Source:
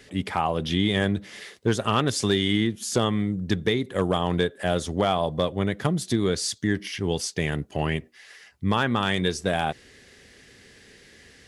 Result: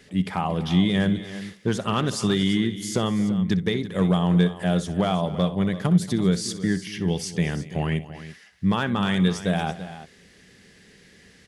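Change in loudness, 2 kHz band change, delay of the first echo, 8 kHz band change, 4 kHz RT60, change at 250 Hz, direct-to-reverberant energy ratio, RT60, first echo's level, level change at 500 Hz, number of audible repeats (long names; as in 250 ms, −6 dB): +1.5 dB, −2.0 dB, 63 ms, −2.0 dB, no reverb audible, +4.0 dB, no reverb audible, no reverb audible, −16.0 dB, −2.0 dB, 3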